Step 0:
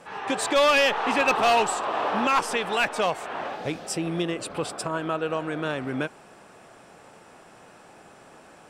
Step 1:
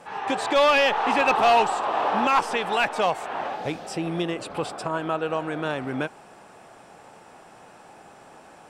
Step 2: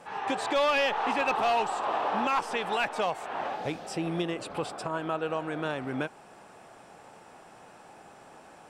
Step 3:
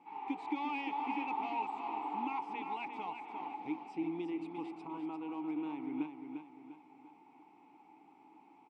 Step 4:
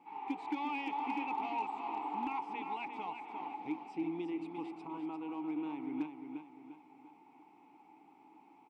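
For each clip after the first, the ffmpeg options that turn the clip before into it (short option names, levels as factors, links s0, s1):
-filter_complex "[0:a]acrossover=split=4900[s0][s1];[s1]acompressor=threshold=0.00891:ratio=4:attack=1:release=60[s2];[s0][s2]amix=inputs=2:normalize=0,equalizer=f=820:t=o:w=0.51:g=5"
-af "alimiter=limit=0.158:level=0:latency=1:release=356,volume=0.708"
-filter_complex "[0:a]asplit=3[s0][s1][s2];[s0]bandpass=f=300:t=q:w=8,volume=1[s3];[s1]bandpass=f=870:t=q:w=8,volume=0.501[s4];[s2]bandpass=f=2240:t=q:w=8,volume=0.355[s5];[s3][s4][s5]amix=inputs=3:normalize=0,aecho=1:1:349|698|1047|1396|1745:0.447|0.179|0.0715|0.0286|0.0114,volume=1.12"
-af "volume=26.6,asoftclip=hard,volume=0.0376"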